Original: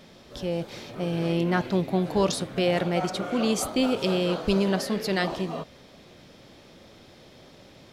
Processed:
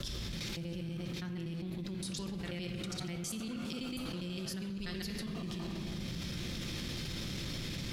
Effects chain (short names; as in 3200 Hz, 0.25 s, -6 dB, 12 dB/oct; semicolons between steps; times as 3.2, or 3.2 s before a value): slices in reverse order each 81 ms, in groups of 5; passive tone stack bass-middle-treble 6-0-2; shoebox room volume 1100 m³, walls mixed, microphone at 0.82 m; fast leveller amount 100%; gain -3.5 dB